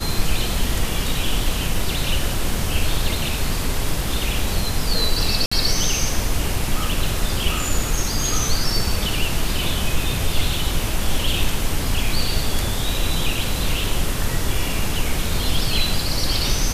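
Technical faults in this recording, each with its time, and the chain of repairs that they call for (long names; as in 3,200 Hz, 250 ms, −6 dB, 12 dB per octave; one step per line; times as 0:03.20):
0:05.46–0:05.51: drop-out 55 ms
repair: repair the gap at 0:05.46, 55 ms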